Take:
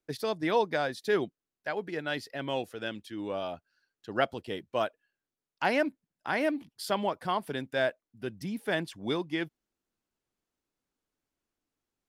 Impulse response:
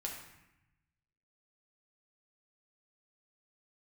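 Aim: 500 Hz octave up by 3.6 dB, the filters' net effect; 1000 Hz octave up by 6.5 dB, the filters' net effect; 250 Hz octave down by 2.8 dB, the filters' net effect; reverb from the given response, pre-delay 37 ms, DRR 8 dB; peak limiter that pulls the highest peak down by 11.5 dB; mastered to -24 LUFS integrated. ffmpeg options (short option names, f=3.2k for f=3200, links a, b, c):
-filter_complex "[0:a]equalizer=f=250:t=o:g=-6,equalizer=f=500:t=o:g=3.5,equalizer=f=1k:t=o:g=7.5,alimiter=limit=-19dB:level=0:latency=1,asplit=2[a][b];[1:a]atrim=start_sample=2205,adelay=37[c];[b][c]afir=irnorm=-1:irlink=0,volume=-8dB[d];[a][d]amix=inputs=2:normalize=0,volume=8dB"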